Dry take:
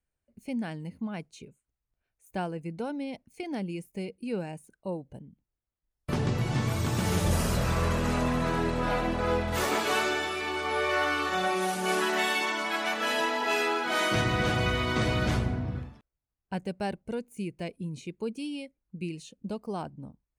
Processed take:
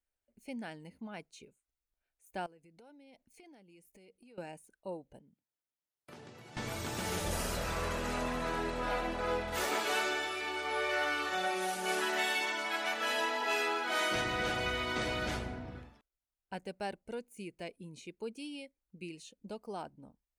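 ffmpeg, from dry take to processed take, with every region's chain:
-filter_complex "[0:a]asettb=1/sr,asplit=3[a][b][c];[a]atrim=end=2.464[d];[b]atrim=start=2.46:end=4.38,asetpts=PTS-STARTPTS,afade=t=in:d=0.004:c=qsin,afade=t=out:st=1.916:d=0.004:c=qsin,equalizer=f=1.2k:w=1.5:g=-2,acompressor=threshold=-47dB:ratio=10:attack=3.2:release=140:knee=1:detection=peak[e];[c]atrim=start=4.376[f];[d][e]acrossfade=d=0.004:c1=hsin:c2=qsin[g];[g][f]acrossfade=d=0.004:c1=qsin:c2=hsin,asettb=1/sr,asplit=3[h][i][j];[h]atrim=end=5.204[k];[i]atrim=start=5.2:end=6.57,asetpts=PTS-STARTPTS,afade=t=in:d=0.004:c=qsin,afade=t=out:st=1.366:d=0.004:c=qsin,highpass=f=96:w=0.5412,highpass=f=96:w=1.3066,acompressor=threshold=-50dB:ratio=2:attack=3.2:release=140:knee=1:detection=peak[l];[j]atrim=start=6.566[m];[k][l]acrossfade=d=0.004:c1=hsin:c2=qsin[n];[n][m]acrossfade=d=0.004:c1=qsin:c2=hsin,equalizer=f=120:t=o:w=2.1:g=-12,bandreject=f=1.1k:w=13,volume=-4dB"

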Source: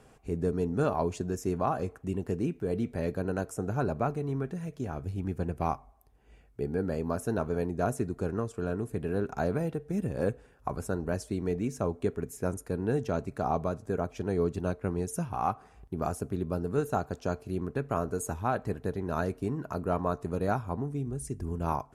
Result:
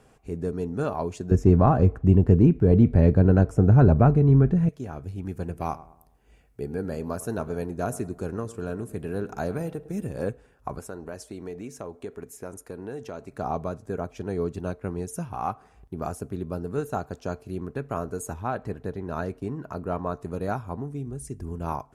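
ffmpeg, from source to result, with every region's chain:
-filter_complex "[0:a]asettb=1/sr,asplit=3[a][b][c];[a]atrim=end=1.314[d];[b]atrim=start=1.31:end=4.69,asetpts=PTS-STARTPTS,afade=t=in:d=0.004:c=qsin,afade=t=out:st=3.376:d=0.004:c=qsin,aemphasis=mode=reproduction:type=riaa,acontrast=63[e];[c]atrim=start=4.686[f];[d][e]acrossfade=d=0.004:c1=hsin:c2=qsin[g];[g][f]acrossfade=d=0.004:c1=qsin:c2=hsin,asettb=1/sr,asplit=3[h][i][j];[h]atrim=end=5.254[k];[i]atrim=start=5.25:end=10.22,asetpts=PTS-STARTPTS,afade=t=in:d=0.004:c=qsin,afade=t=out:st=4.966:d=0.004:c=qsin,highshelf=f=5.3k:g=6.5,asplit=2[l][m];[m]adelay=106,lowpass=f=1.8k:p=1,volume=-16.5dB,asplit=2[n][o];[o]adelay=106,lowpass=f=1.8k:p=1,volume=0.43,asplit=2[p][q];[q]adelay=106,lowpass=f=1.8k:p=1,volume=0.43,asplit=2[r][s];[s]adelay=106,lowpass=f=1.8k:p=1,volume=0.43[t];[l][n][p][r][t]amix=inputs=5:normalize=0,atrim=end_sample=219177[u];[j]atrim=start=10.216[v];[k][u]acrossfade=d=0.004:c1=hsin:c2=qsin[w];[w][v]acrossfade=d=0.004:c1=qsin:c2=hsin,asettb=1/sr,asplit=3[x][y][z];[x]atrim=end=10.794[aa];[y]atrim=start=10.79:end=13.33,asetpts=PTS-STARTPTS,afade=t=in:d=0.004:c=qsin,afade=t=out:st=2.536:d=0.004:c=qsin,bass=f=250:g=-8,treble=f=4k:g=0,acompressor=threshold=-33dB:ratio=2.5:attack=3.2:release=140:knee=1:detection=peak[ab];[z]atrim=start=13.326[ac];[aa][ab]acrossfade=d=0.004:c1=hsin:c2=qsin[ad];[ad][ac]acrossfade=d=0.004:c1=qsin:c2=hsin,asettb=1/sr,asplit=3[ae][af][ag];[ae]atrim=end=18.334[ah];[af]atrim=start=18.33:end=20.16,asetpts=PTS-STARTPTS,afade=t=in:d=0.004:c=qsin,afade=t=out:st=1.826:d=0.004:c=qsin,agate=range=-33dB:threshold=-47dB:ratio=3:release=100:detection=peak,highshelf=f=6.5k:g=-7,acompressor=mode=upward:threshold=-35dB:ratio=2.5:attack=3.2:release=140:knee=2.83:detection=peak[ai];[ag]atrim=start=20.156[aj];[ah][ai]acrossfade=d=0.004:c1=hsin:c2=qsin[ak];[ak][aj]acrossfade=d=0.004:c1=qsin:c2=hsin"

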